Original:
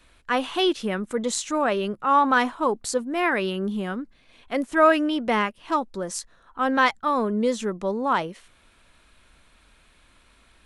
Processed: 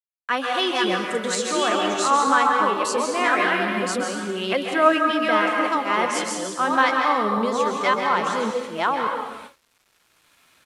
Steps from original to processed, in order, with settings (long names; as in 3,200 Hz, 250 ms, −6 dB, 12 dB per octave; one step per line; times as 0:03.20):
delay that plays each chunk backwards 567 ms, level −2.5 dB
camcorder AGC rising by 6.8 dB per second
parametric band 94 Hz +14.5 dB 1.5 octaves
in parallel at 0 dB: downward compressor, threshold −32 dBFS, peak gain reduction 19.5 dB
on the sum: meter weighting curve A
dense smooth reverb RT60 1.2 s, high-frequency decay 0.9×, pre-delay 120 ms, DRR 2 dB
noise gate with hold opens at −23 dBFS
flanger 0.22 Hz, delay 1.8 ms, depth 9.6 ms, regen +62%
bit-depth reduction 10 bits, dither none
downsampling to 32,000 Hz
level +2 dB